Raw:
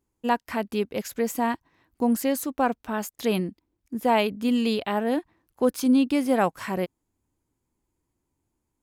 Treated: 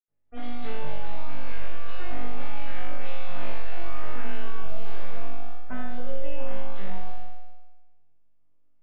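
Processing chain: random holes in the spectrogram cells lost 29%; ever faster or slower copies 566 ms, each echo +7 st, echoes 3; full-wave rectifier; reverberation RT60 0.90 s, pre-delay 77 ms; compression 6:1, threshold -47 dBFS, peak gain reduction 15.5 dB; flutter echo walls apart 3.5 m, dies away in 1.1 s; trim +16 dB

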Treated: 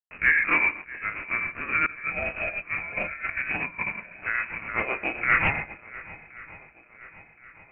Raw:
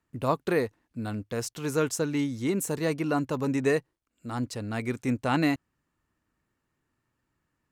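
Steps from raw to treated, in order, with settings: every event in the spectrogram widened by 60 ms; bit crusher 7-bit; high-pass 610 Hz 12 dB/octave; plate-style reverb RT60 0.78 s, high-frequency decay 1×, DRR 4 dB; tremolo 7.5 Hz, depth 63%; waveshaping leveller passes 2; 1.86–4.38 s: compressor with a negative ratio -30 dBFS, ratio -0.5; peaking EQ 1.9 kHz -7 dB 0.3 oct; shuffle delay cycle 1071 ms, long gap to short 1.5:1, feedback 48%, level -19.5 dB; frequency inversion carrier 2.8 kHz; loudspeaker Doppler distortion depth 0.12 ms; trim +1 dB

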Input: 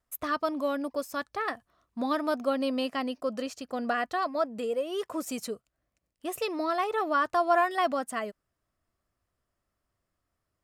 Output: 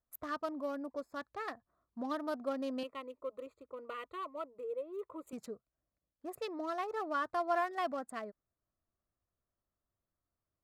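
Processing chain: local Wiener filter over 15 samples; 2.83–5.33 s: static phaser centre 1.1 kHz, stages 8; trim -8.5 dB

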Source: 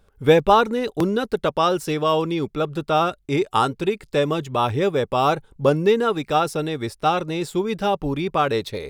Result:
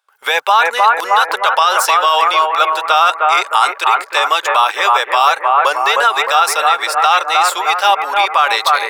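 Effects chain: high-pass 870 Hz 24 dB/octave; gate with hold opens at -48 dBFS; bucket-brigade echo 308 ms, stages 4096, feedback 53%, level -4.5 dB; loudness maximiser +18.5 dB; trim -1 dB

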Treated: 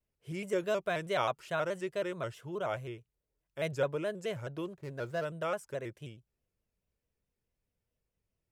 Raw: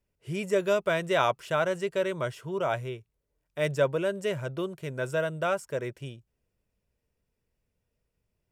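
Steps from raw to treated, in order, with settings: 4.65–5.25 s: median filter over 15 samples; vibrato with a chosen wave square 4.7 Hz, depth 100 cents; trim -6.5 dB

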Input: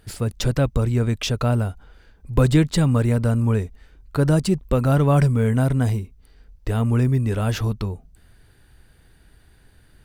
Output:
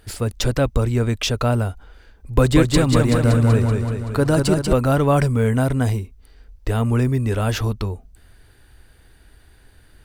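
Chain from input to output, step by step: peaking EQ 160 Hz -7 dB 0.85 oct; 2.33–4.73 s: modulated delay 190 ms, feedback 61%, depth 57 cents, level -4 dB; trim +3.5 dB

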